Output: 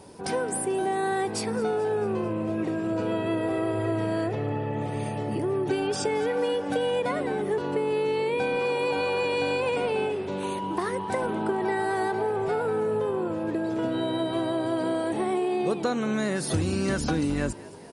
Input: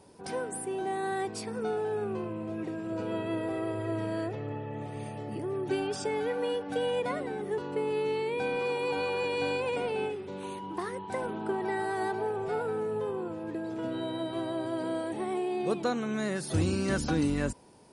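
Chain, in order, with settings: compressor 4:1, threshold -32 dBFS, peak gain reduction 8.5 dB; on a send: frequency-shifting echo 0.219 s, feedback 59%, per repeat +58 Hz, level -19 dB; on the sum: gain +8.5 dB

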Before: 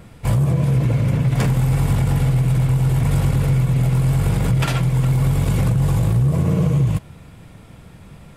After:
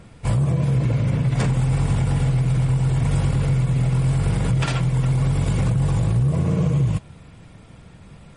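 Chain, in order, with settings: gain -2 dB; MP3 40 kbps 44100 Hz

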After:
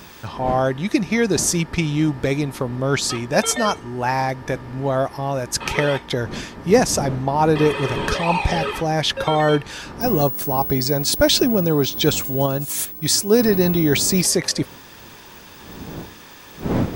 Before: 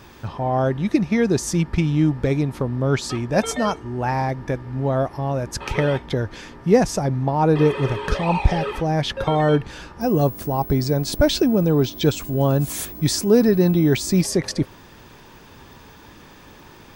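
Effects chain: wind noise 240 Hz -32 dBFS; tilt +2 dB/oct; 12.46–13.39 upward expander 1.5:1, over -27 dBFS; gain +3 dB

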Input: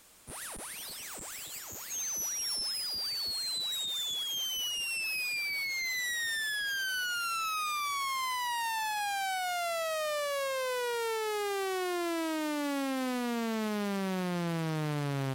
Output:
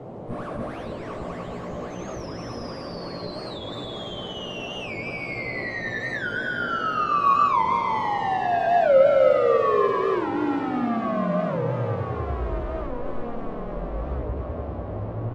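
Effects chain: LPF 2000 Hz 12 dB/oct; low shelf 460 Hz +11 dB; negative-ratio compressor -31 dBFS, ratio -1; frequency shift -250 Hz; small resonant body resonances 590/1100 Hz, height 12 dB, ringing for 25 ms; band noise 93–680 Hz -39 dBFS; doubler 17 ms -5 dB; multi-head echo 98 ms, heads first and third, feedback 53%, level -6.5 dB; record warp 45 rpm, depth 160 cents

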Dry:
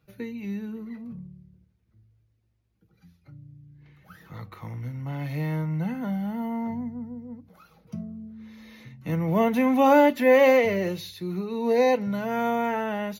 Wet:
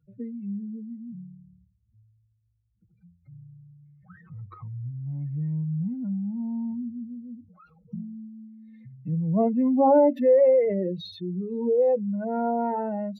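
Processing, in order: spectral contrast raised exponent 2.6

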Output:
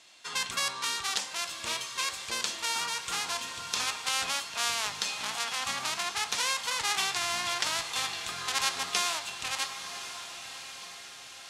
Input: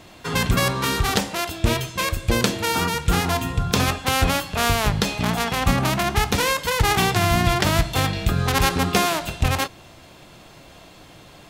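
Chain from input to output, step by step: weighting filter ITU-R 468; on a send: diffused feedback echo 1.077 s, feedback 55%, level -10 dB; on the sum: dynamic EQ 1000 Hz, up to +5 dB, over -37 dBFS, Q 2.1; maximiser -7 dB; gain -8 dB

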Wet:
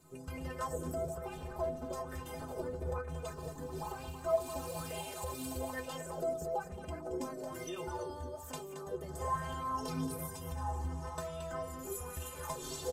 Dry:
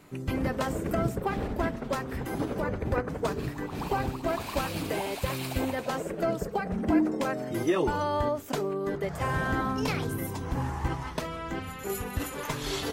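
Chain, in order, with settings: ten-band EQ 250 Hz -12 dB, 2000 Hz -12 dB, 4000 Hz -4 dB, 8000 Hz +7 dB; compressor, threshold -32 dBFS, peak gain reduction 8 dB; metallic resonator 76 Hz, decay 0.39 s, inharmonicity 0.03; echo 0.224 s -8.5 dB; LFO bell 1.1 Hz 250–3000 Hz +11 dB; gain +3.5 dB

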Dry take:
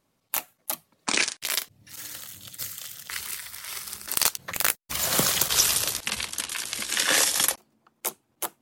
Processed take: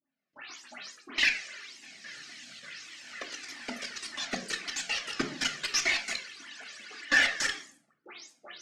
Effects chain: spectral delay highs late, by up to 0.231 s; bell 2100 Hz +5.5 dB 1.4 oct; level quantiser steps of 22 dB; on a send at -3 dB: reverb RT60 0.60 s, pre-delay 3 ms; on the sum: echoes that change speed 0.205 s, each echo +4 st, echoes 3; speaker cabinet 230–6100 Hz, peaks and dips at 250 Hz +7 dB, 510 Hz -5 dB, 950 Hz -8 dB, 1800 Hz +4 dB, 3500 Hz -4 dB; added harmonics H 6 -32 dB, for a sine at -9 dBFS; cascading flanger falling 1.7 Hz; gain +1.5 dB

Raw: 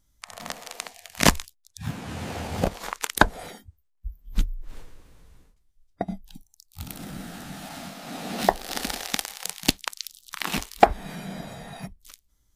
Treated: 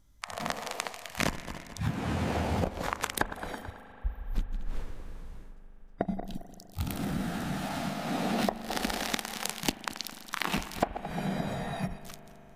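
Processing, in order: regenerating reverse delay 0.109 s, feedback 43%, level -14 dB; high shelf 3100 Hz -8.5 dB; compressor 20:1, threshold -31 dBFS, peak gain reduction 23.5 dB; reverb RT60 5.3 s, pre-delay 40 ms, DRR 14 dB; gain +5.5 dB

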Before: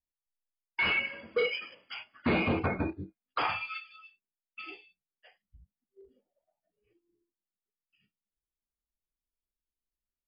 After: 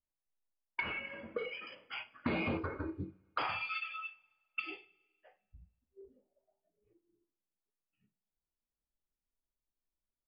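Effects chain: 3.82–4.6 band shelf 1300 Hz +11.5 dB 2.9 oct; low-pass opened by the level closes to 970 Hz, open at -30.5 dBFS; compressor 10:1, threshold -33 dBFS, peak gain reduction 9.5 dB; 0.8–1.67 air absorption 420 m; 2.57–3 fixed phaser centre 720 Hz, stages 6; two-slope reverb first 0.33 s, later 1.5 s, from -18 dB, DRR 11 dB; gain +1 dB

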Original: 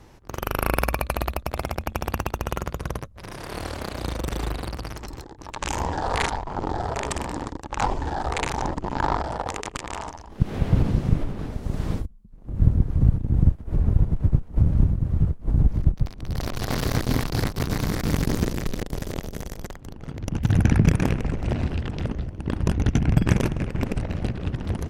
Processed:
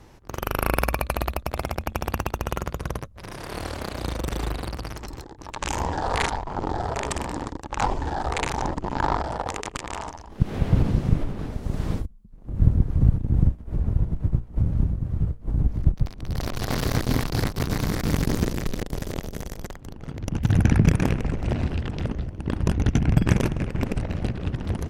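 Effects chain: 13.47–15.82 resonator 58 Hz, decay 0.28 s, harmonics all, mix 50%

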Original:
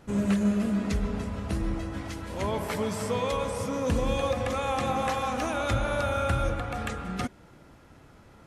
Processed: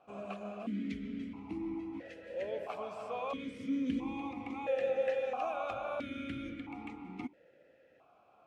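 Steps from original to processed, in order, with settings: vowel sequencer 1.5 Hz; gain +2.5 dB

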